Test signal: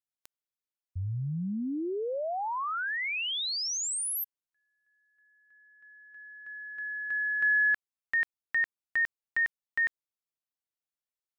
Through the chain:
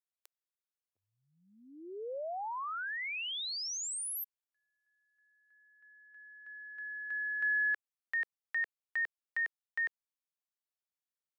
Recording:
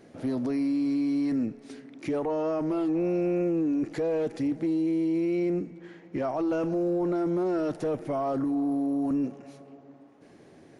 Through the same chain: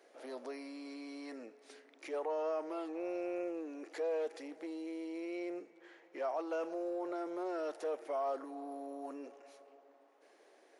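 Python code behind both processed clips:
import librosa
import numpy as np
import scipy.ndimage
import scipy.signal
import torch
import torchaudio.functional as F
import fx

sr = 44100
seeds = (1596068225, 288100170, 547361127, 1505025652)

y = scipy.signal.sosfilt(scipy.signal.butter(4, 440.0, 'highpass', fs=sr, output='sos'), x)
y = y * 10.0 ** (-6.0 / 20.0)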